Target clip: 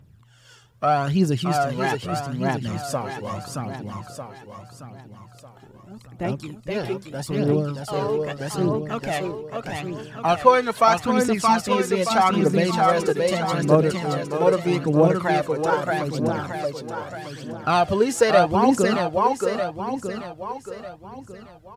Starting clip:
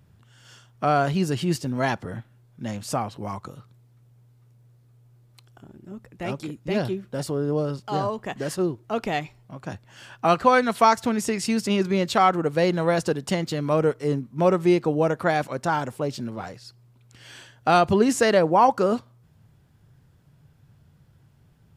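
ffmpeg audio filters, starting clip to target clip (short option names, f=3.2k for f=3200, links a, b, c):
-af "aecho=1:1:624|1248|1872|2496|3120|3744|4368:0.668|0.341|0.174|0.0887|0.0452|0.0231|0.0118,aphaser=in_gain=1:out_gain=1:delay=2.5:decay=0.55:speed=0.8:type=triangular,volume=-1.5dB"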